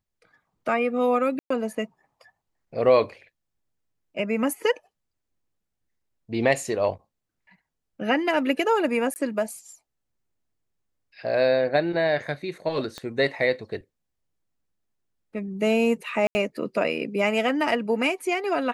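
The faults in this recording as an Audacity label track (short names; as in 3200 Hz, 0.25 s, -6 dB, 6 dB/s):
1.390000	1.500000	gap 0.114 s
9.140000	9.160000	gap 19 ms
12.980000	12.980000	pop -20 dBFS
16.270000	16.350000	gap 80 ms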